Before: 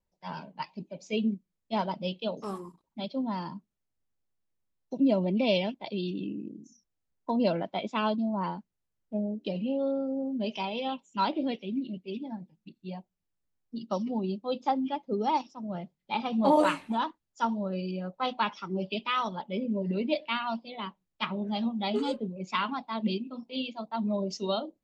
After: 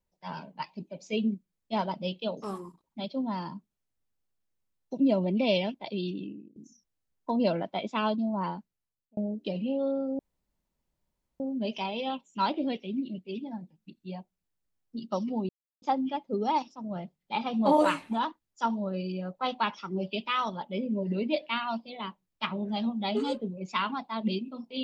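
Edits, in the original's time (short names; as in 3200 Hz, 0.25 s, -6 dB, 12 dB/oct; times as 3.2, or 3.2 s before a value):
6.08–6.56 fade out, to -23.5 dB
8.57–9.17 fade out
10.19 insert room tone 1.21 s
14.28–14.61 mute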